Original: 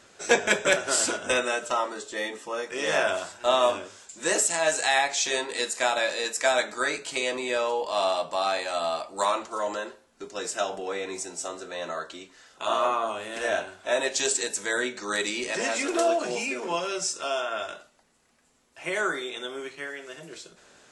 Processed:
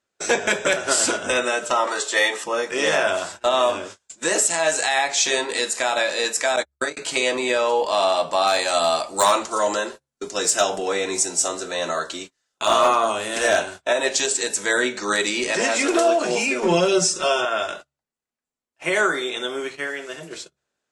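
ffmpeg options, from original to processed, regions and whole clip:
ffmpeg -i in.wav -filter_complex "[0:a]asettb=1/sr,asplit=3[link_01][link_02][link_03];[link_01]atrim=end=1.874[link_04];[link_02]atrim=start=1.87:end=2.44,asetpts=PTS-STARTPTS,afade=type=in:duration=0.004:curve=qsin,afade=type=out:start_time=0.566:duration=0.004:curve=qsin,highpass=590,acontrast=72[link_05];[link_03]atrim=start=2.436[link_06];[link_04][link_05]acrossfade=duration=0.004:curve1=hsin:curve2=qsin[link_07];[link_07][link_06]acrossfade=duration=0.004:curve1=qsin:curve2=hsin,asettb=1/sr,asplit=3[link_08][link_09][link_10];[link_08]atrim=end=6.564[link_11];[link_09]atrim=start=6.56:end=6.97,asetpts=PTS-STARTPTS,afade=type=in:duration=0.004:curve=qsin,afade=type=out:start_time=0.406:duration=0.004:curve=qsin,equalizer=frequency=2100:width_type=o:width=2.7:gain=-5.5,agate=range=-57dB:threshold=-30dB:ratio=16:release=100:detection=peak[link_12];[link_10]atrim=start=6.966[link_13];[link_11][link_12]acrossfade=duration=0.004:curve1=hsin:curve2=qsin[link_14];[link_14][link_13]acrossfade=duration=0.004:curve1=qsin:curve2=hsin,asettb=1/sr,asplit=3[link_15][link_16][link_17];[link_15]atrim=end=8.474[link_18];[link_16]atrim=start=8.47:end=13.82,asetpts=PTS-STARTPTS,afade=type=in:duration=0.004:curve=qsin,afade=type=out:start_time=5.346:duration=0.004:curve=qsin,bass=frequency=250:gain=1,treble=frequency=4000:gain=7,asoftclip=type=hard:threshold=-17.5dB[link_19];[link_17]atrim=start=13.816[link_20];[link_18][link_19]acrossfade=duration=0.004:curve1=hsin:curve2=qsin[link_21];[link_21][link_20]acrossfade=duration=0.004:curve1=qsin:curve2=hsin,asettb=1/sr,asplit=3[link_22][link_23][link_24];[link_22]atrim=end=16.624[link_25];[link_23]atrim=start=16.62:end=17.45,asetpts=PTS-STARTPTS,afade=type=in:duration=0.004:curve=qsin,afade=type=out:start_time=0.826:duration=0.004:curve=qsin,lowshelf=frequency=220:gain=12,aecho=1:1:5.4:0.74,atrim=end_sample=36603[link_26];[link_24]atrim=start=17.446[link_27];[link_25][link_26]acrossfade=duration=0.004:curve1=hsin:curve2=qsin[link_28];[link_28][link_27]acrossfade=duration=0.004:curve1=qsin:curve2=hsin,agate=range=-33dB:threshold=-43dB:ratio=16:detection=peak,bandreject=frequency=68.9:width_type=h:width=4,bandreject=frequency=137.8:width_type=h:width=4,alimiter=limit=-16.5dB:level=0:latency=1:release=223,volume=8dB" out.wav

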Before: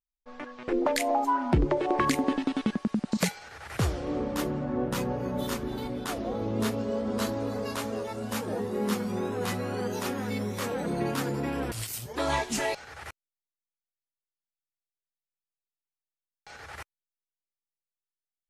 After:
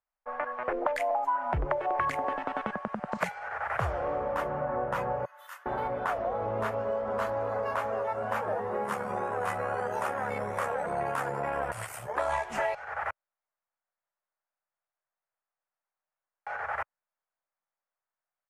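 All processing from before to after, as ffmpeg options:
ffmpeg -i in.wav -filter_complex "[0:a]asettb=1/sr,asplit=3[link_01][link_02][link_03];[link_01]atrim=end=5.254[link_04];[link_02]atrim=start=5.25:end=5.66,asetpts=PTS-STARTPTS,afade=type=in:duration=0.004:curve=qsin,afade=type=out:start_time=0.406:duration=0.004:curve=qsin,highpass=1300,aderivative,bandreject=frequency=2300:width=9.6[link_05];[link_03]atrim=start=5.656[link_06];[link_04][link_05]acrossfade=duration=0.004:curve1=hsin:curve2=qsin[link_07];[link_07][link_06]acrossfade=duration=0.004:curve1=qsin:curve2=hsin,asettb=1/sr,asplit=3[link_08][link_09][link_10];[link_08]atrim=end=8.844[link_11];[link_09]atrim=start=8.84:end=12.45,asetpts=PTS-STARTPTS,afade=type=in:duration=0.004:curve=qsin,afade=type=out:start_time=3.606:duration=0.004:curve=qsin,equalizer=frequency=9100:width=0.96:gain=12.5,tremolo=f=71:d=0.519[link_12];[link_10]atrim=start=12.446[link_13];[link_11][link_12]acrossfade=duration=0.004:curve1=hsin:curve2=qsin[link_14];[link_14][link_13]acrossfade=duration=0.004:curve1=qsin:curve2=hsin,firequalizer=gain_entry='entry(130,0);entry(270,-11);entry(600,9);entry(1500,6);entry(3900,-22)':delay=0.05:min_phase=1,acrossover=split=120|3000[link_15][link_16][link_17];[link_16]acompressor=threshold=-33dB:ratio=6[link_18];[link_15][link_18][link_17]amix=inputs=3:normalize=0,lowshelf=frequency=200:gain=-12,volume=6dB" out.wav

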